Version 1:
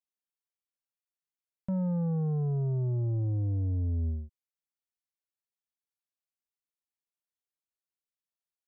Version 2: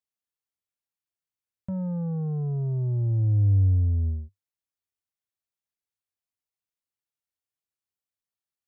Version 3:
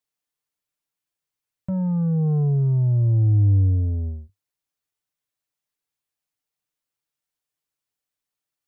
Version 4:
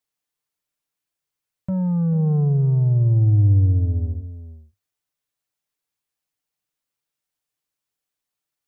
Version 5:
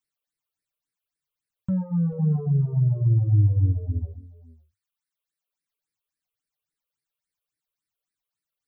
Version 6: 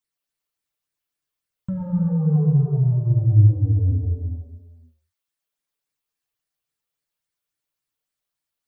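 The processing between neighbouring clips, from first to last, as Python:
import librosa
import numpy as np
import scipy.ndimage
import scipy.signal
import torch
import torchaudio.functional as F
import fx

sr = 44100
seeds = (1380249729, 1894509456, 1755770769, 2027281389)

y1 = fx.peak_eq(x, sr, hz=98.0, db=11.5, octaves=0.52)
y1 = y1 * 10.0 ** (-1.0 / 20.0)
y2 = y1 + 0.54 * np.pad(y1, (int(6.7 * sr / 1000.0), 0))[:len(y1)]
y2 = y2 * 10.0 ** (4.5 / 20.0)
y3 = y2 + 10.0 ** (-13.5 / 20.0) * np.pad(y2, (int(438 * sr / 1000.0), 0))[:len(y2)]
y3 = y3 * 10.0 ** (1.5 / 20.0)
y4 = fx.phaser_stages(y3, sr, stages=8, low_hz=220.0, high_hz=1000.0, hz=3.6, feedback_pct=5)
y4 = fx.dereverb_blind(y4, sr, rt60_s=0.93)
y5 = fx.rev_gated(y4, sr, seeds[0], gate_ms=410, shape='flat', drr_db=-1.0)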